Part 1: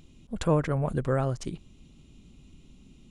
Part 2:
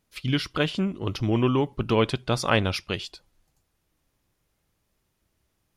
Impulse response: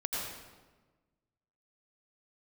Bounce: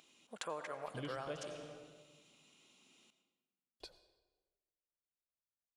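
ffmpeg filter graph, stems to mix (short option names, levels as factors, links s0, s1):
-filter_complex "[0:a]highpass=720,volume=0.75,asplit=3[s0][s1][s2];[s1]volume=0.251[s3];[1:a]agate=range=0.0224:threshold=0.00316:ratio=3:detection=peak,equalizer=f=560:w=1.9:g=11.5,adelay=700,volume=0.398,asplit=3[s4][s5][s6];[s4]atrim=end=1.45,asetpts=PTS-STARTPTS,afade=t=out:st=1.446:d=0.004:c=hsin[s7];[s5]atrim=start=1.45:end=3.8,asetpts=PTS-STARTPTS,volume=0[s8];[s6]atrim=start=3.8,asetpts=PTS-STARTPTS,afade=t=in:d=0.004:c=hsin[s9];[s7][s8][s9]concat=n=3:v=0:a=1,asplit=2[s10][s11];[s11]volume=0.158[s12];[s2]apad=whole_len=285236[s13];[s10][s13]sidechaincompress=threshold=0.00891:ratio=8:attack=16:release=1090[s14];[2:a]atrim=start_sample=2205[s15];[s3][s12]amix=inputs=2:normalize=0[s16];[s16][s15]afir=irnorm=-1:irlink=0[s17];[s0][s14][s17]amix=inputs=3:normalize=0,acompressor=threshold=0.00631:ratio=2.5"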